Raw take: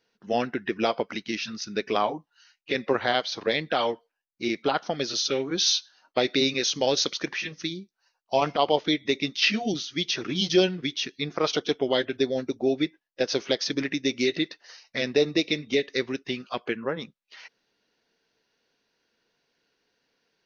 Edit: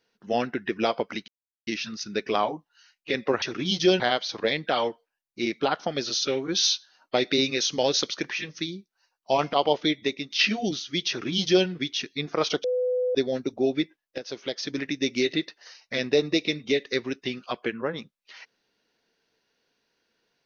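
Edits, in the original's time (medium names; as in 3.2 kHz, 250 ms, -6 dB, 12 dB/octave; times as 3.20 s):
1.28 s: insert silence 0.39 s
9.01–9.33 s: fade out, to -10 dB
10.12–10.70 s: copy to 3.03 s
11.67–12.18 s: bleep 501 Hz -22 dBFS
13.21–14.11 s: fade in, from -13 dB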